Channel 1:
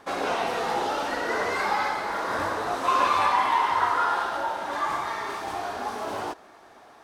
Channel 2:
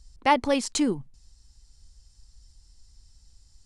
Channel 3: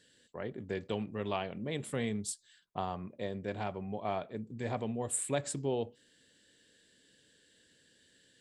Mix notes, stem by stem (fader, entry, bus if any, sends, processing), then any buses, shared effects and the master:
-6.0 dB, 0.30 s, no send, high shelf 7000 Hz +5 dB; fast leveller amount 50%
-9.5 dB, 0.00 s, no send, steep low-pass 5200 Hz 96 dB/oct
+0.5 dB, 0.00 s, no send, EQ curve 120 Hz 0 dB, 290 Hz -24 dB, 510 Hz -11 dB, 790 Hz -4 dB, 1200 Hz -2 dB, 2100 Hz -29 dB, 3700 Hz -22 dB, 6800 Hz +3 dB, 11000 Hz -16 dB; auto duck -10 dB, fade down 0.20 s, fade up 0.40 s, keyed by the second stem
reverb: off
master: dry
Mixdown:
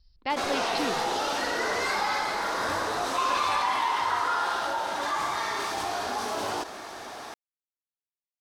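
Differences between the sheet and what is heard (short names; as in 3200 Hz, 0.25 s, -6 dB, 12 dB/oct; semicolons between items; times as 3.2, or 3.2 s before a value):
stem 3: muted; master: extra bell 5000 Hz +6.5 dB 1.7 oct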